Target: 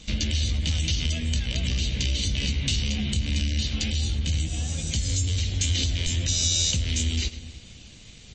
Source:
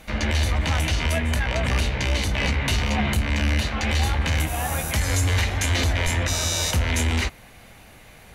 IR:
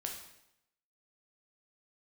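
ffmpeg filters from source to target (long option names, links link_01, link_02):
-filter_complex "[0:a]asplit=2[link_01][link_02];[link_02]aecho=0:1:107:0.119[link_03];[link_01][link_03]amix=inputs=2:normalize=0,acompressor=threshold=-26dB:ratio=16,asplit=3[link_04][link_05][link_06];[link_04]afade=type=out:start_time=3.89:duration=0.02[link_07];[link_05]equalizer=frequency=1900:width_type=o:width=2.6:gain=-4,afade=type=in:start_time=3.89:duration=0.02,afade=type=out:start_time=5.59:duration=0.02[link_08];[link_06]afade=type=in:start_time=5.59:duration=0.02[link_09];[link_07][link_08][link_09]amix=inputs=3:normalize=0,asplit=2[link_10][link_11];[link_11]adelay=297,lowpass=frequency=1000:poles=1,volume=-14dB,asplit=2[link_12][link_13];[link_13]adelay=297,lowpass=frequency=1000:poles=1,volume=0.24,asplit=2[link_14][link_15];[link_15]adelay=297,lowpass=frequency=1000:poles=1,volume=0.24[link_16];[link_12][link_14][link_16]amix=inputs=3:normalize=0[link_17];[link_10][link_17]amix=inputs=2:normalize=0,acontrast=32,firequalizer=gain_entry='entry(180,0);entry(870,-22);entry(1900,-13);entry(3100,4)':delay=0.05:min_phase=1,aeval=exprs='sgn(val(0))*max(abs(val(0))-0.00299,0)':channel_layout=same" -ar 24000 -c:a libmp3lame -b:a 32k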